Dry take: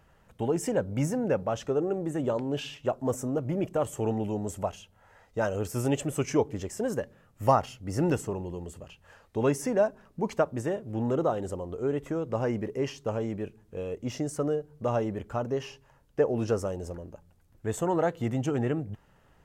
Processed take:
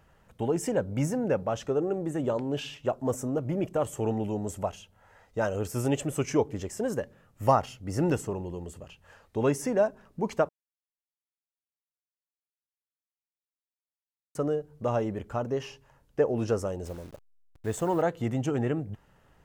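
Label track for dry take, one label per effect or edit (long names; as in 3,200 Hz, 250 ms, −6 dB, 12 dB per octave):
10.490000	14.350000	silence
16.850000	18.020000	hold until the input has moved step −47.5 dBFS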